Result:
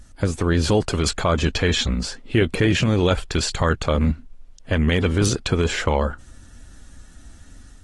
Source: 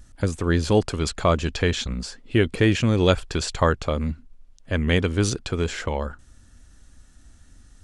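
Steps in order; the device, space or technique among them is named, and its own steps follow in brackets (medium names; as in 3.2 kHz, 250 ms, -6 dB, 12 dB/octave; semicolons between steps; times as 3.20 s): 3.35–3.79 s: peaking EQ 700 Hz -3 dB 2 oct; low-bitrate web radio (level rider gain up to 4 dB; peak limiter -11.5 dBFS, peak gain reduction 9 dB; trim +2.5 dB; AAC 32 kbps 48 kHz)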